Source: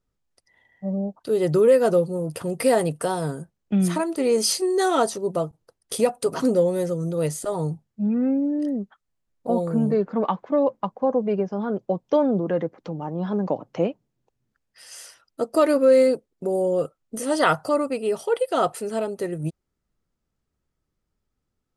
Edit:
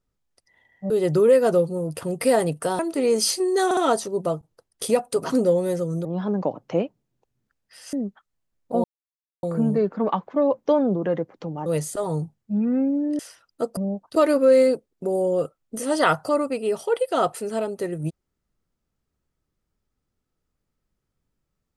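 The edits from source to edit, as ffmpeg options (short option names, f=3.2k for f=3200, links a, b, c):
-filter_complex "[0:a]asplit=13[a][b][c][d][e][f][g][h][i][j][k][l][m];[a]atrim=end=0.902[n];[b]atrim=start=1.288:end=3.182[o];[c]atrim=start=4.008:end=4.932[p];[d]atrim=start=4.868:end=4.932[q];[e]atrim=start=4.868:end=7.152[r];[f]atrim=start=13.098:end=14.982[s];[g]atrim=start=8.678:end=9.59,asetpts=PTS-STARTPTS,afade=t=out:st=0.908:d=0.004:c=hsin,apad=pad_dur=0.59[t];[h]atrim=start=9.59:end=10.822,asetpts=PTS-STARTPTS,afade=t=in:d=0.004:c=hsin[u];[i]atrim=start=12.098:end=13.102[v];[j]atrim=start=7.148:end=8.682[w];[k]atrim=start=14.978:end=15.562[x];[l]atrim=start=0.898:end=1.292[y];[m]atrim=start=15.558[z];[n][o]acrossfade=d=0.004:c1=hsin:c2=hsin[aa];[aa][p]acrossfade=d=0.004:c1=hsin:c2=hsin[ab];[ab][q]acrossfade=d=0.004:c1=hsin:c2=hsin[ac];[ac][r]acrossfade=d=0.004:c1=hsin:c2=hsin[ad];[ad][s]acrossfade=d=0.004:c1=hsin:c2=hsin[ae];[t][u]concat=n=2:v=0:a=1[af];[ae][af]acrossfade=d=0.004:c1=hsin:c2=hsin[ag];[ag][v]acrossfade=d=0.004:c1=hsin:c2=hsin[ah];[ah][w]acrossfade=d=0.004:c1=hsin:c2=hsin[ai];[ai][x]acrossfade=d=0.004:c1=hsin:c2=hsin[aj];[aj][y]acrossfade=d=0.004:c1=hsin:c2=hsin[ak];[ak][z]acrossfade=d=0.004:c1=hsin:c2=hsin"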